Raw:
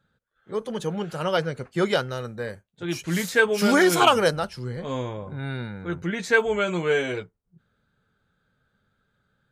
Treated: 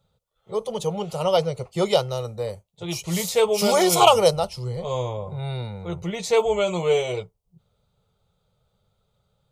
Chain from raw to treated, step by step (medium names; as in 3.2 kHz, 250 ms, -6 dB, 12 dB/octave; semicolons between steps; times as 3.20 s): static phaser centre 670 Hz, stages 4; trim +6 dB